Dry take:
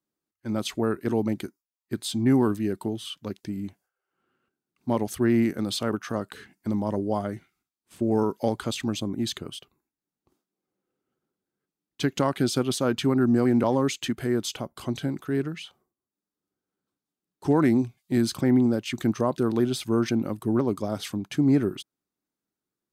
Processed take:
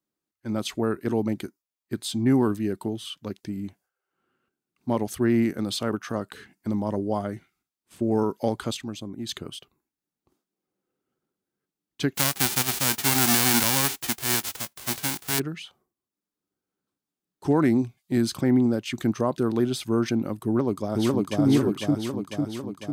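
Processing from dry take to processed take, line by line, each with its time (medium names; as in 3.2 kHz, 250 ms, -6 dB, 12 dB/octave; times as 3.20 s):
8.77–9.29 s: gain -6.5 dB
12.14–15.38 s: formants flattened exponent 0.1
20.45–21.44 s: echo throw 500 ms, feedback 65%, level 0 dB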